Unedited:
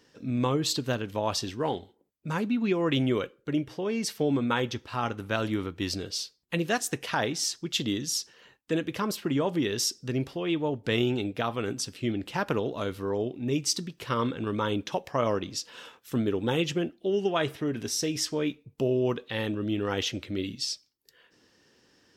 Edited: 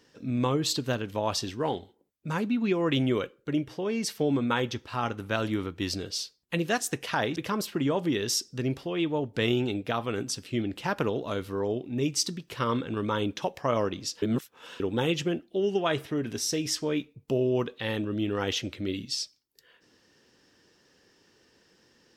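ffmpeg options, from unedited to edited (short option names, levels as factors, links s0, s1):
-filter_complex "[0:a]asplit=4[s0][s1][s2][s3];[s0]atrim=end=7.362[s4];[s1]atrim=start=8.858:end=15.722[s5];[s2]atrim=start=15.718:end=16.302,asetpts=PTS-STARTPTS,areverse[s6];[s3]atrim=start=16.298[s7];[s4][s5]acrossfade=d=0.004:c1=hsin:c2=hsin[s8];[s8][s6]acrossfade=d=0.004:c1=hsin:c2=hsin[s9];[s9][s7]acrossfade=d=0.004:c1=hsin:c2=hsin"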